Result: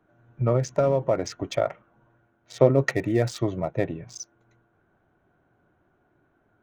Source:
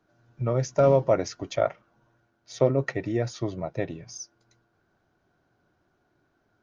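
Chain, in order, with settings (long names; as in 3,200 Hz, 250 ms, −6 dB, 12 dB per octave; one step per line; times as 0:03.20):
adaptive Wiener filter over 9 samples
0:00.56–0:01.70: downward compressor 3 to 1, threshold −24 dBFS, peak gain reduction 7.5 dB
0:02.73–0:03.71: high-shelf EQ 4,000 Hz +11.5 dB
level +4 dB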